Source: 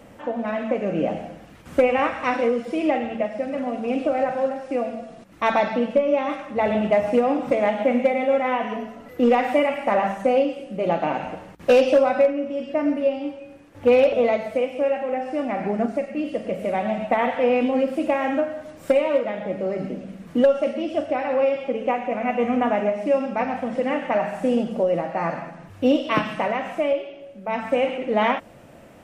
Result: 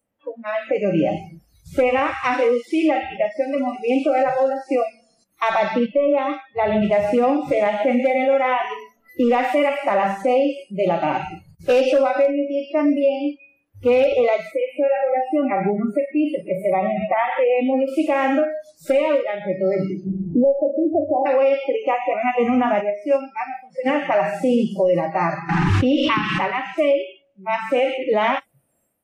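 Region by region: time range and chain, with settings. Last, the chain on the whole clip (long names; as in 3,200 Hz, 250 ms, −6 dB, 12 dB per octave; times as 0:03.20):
0:05.86–0:06.82: low-pass filter 4,700 Hz + dynamic equaliser 2,500 Hz, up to −3 dB, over −41 dBFS, Q 2.1 + multiband upward and downward expander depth 40%
0:14.51–0:17.88: parametric band 5,200 Hz −9.5 dB 1.4 octaves + downward compressor 4 to 1, threshold −22 dBFS
0:20.06–0:21.26: Butterworth low-pass 940 Hz 96 dB per octave + multiband upward and downward compressor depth 70%
0:22.81–0:23.86: noise gate −19 dBFS, range −6 dB + high-pass filter 120 Hz
0:25.49–0:26.78: low-pass filter 5,300 Hz + parametric band 630 Hz −8.5 dB 0.32 octaves + background raised ahead of every attack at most 21 dB per second
whole clip: noise reduction from a noise print of the clip's start 30 dB; automatic gain control gain up to 11.5 dB; boost into a limiter +6.5 dB; level −9 dB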